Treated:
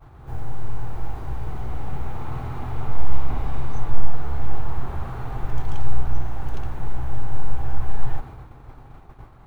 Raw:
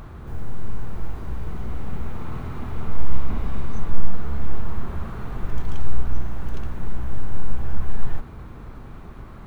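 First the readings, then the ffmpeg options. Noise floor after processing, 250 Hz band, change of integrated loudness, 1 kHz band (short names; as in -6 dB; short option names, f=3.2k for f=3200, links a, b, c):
-46 dBFS, -3.0 dB, +1.0 dB, +4.0 dB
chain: -af "equalizer=f=125:t=o:w=0.33:g=6,equalizer=f=200:t=o:w=0.33:g=-11,equalizer=f=800:t=o:w=0.33:g=9,agate=range=-33dB:threshold=-31dB:ratio=3:detection=peak"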